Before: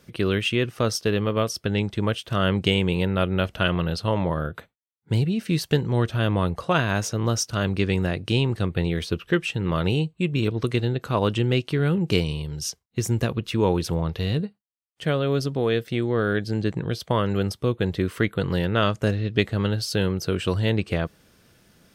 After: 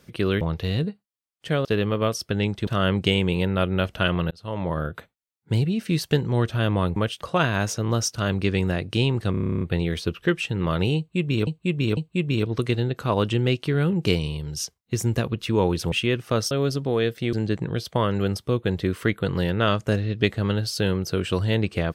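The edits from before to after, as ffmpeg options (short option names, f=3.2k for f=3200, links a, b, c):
-filter_complex "[0:a]asplit=22[a][b][c][d][e][f][g][h][i][j][k][l][m][n][o][p][q][r][s][t][u][v];[a]atrim=end=0.412[w];[b]atrim=start=13.968:end=15.212[x];[c]atrim=start=0.998:end=2.022[y];[d]atrim=start=2.268:end=3.91,asetpts=PTS-STARTPTS,afade=t=out:st=1.638:d=0.004:c=hsin[z];[e]atrim=start=3.91:end=6.562,asetpts=PTS-STARTPTS,afade=t=in:d=0.47[aa];[f]atrim=start=2.018:end=2.272[ab];[g]atrim=start=6.558:end=8.692[ac];[h]atrim=start=8.658:end=8.692[ad];[i]atrim=start=8.658:end=8.692[ae];[j]atrim=start=8.658:end=8.692[af];[k]atrim=start=8.658:end=8.692[ag];[l]atrim=start=8.658:end=8.692[ah];[m]atrim=start=8.658:end=8.692[ai];[n]atrim=start=8.658:end=8.692[aj];[o]atrim=start=8.658:end=8.692[ak];[p]atrim=start=8.658:end=8.692[al];[q]atrim=start=8.658:end=10.522[am];[r]atrim=start=10.018:end=10.522[an];[s]atrim=start=10.018:end=13.972[ao];[t]atrim=start=0.408:end=1.002[ap];[u]atrim=start=15.208:end=16.032[aq];[v]atrim=start=16.478[ar];[w][x]acrossfade=d=0.004:c1=hsin:c2=hsin[as];[as][y]acrossfade=d=0.004:c1=hsin:c2=hsin[at];[z][aa]concat=n=2:v=0:a=1[au];[at][au]acrossfade=d=0.004:c1=hsin:c2=hsin[av];[av][ab]acrossfade=d=0.004:c1=hsin:c2=hsin[aw];[aw][ac]acrossfade=d=0.004:c1=hsin:c2=hsin[ax];[ax][ad]acrossfade=d=0.004:c1=hsin:c2=hsin[ay];[ay][ae]acrossfade=d=0.004:c1=hsin:c2=hsin[az];[az][af]acrossfade=d=0.004:c1=hsin:c2=hsin[ba];[ba][ag]acrossfade=d=0.004:c1=hsin:c2=hsin[bb];[bb][ah]acrossfade=d=0.004:c1=hsin:c2=hsin[bc];[bc][ai]acrossfade=d=0.004:c1=hsin:c2=hsin[bd];[bd][aj]acrossfade=d=0.004:c1=hsin:c2=hsin[be];[be][ak]acrossfade=d=0.004:c1=hsin:c2=hsin[bf];[bf][al]acrossfade=d=0.004:c1=hsin:c2=hsin[bg];[bg][am]acrossfade=d=0.004:c1=hsin:c2=hsin[bh];[bh][an]acrossfade=d=0.004:c1=hsin:c2=hsin[bi];[bi][ao]acrossfade=d=0.004:c1=hsin:c2=hsin[bj];[bj][ap]acrossfade=d=0.004:c1=hsin:c2=hsin[bk];[bk][aq]acrossfade=d=0.004:c1=hsin:c2=hsin[bl];[bl][ar]acrossfade=d=0.004:c1=hsin:c2=hsin"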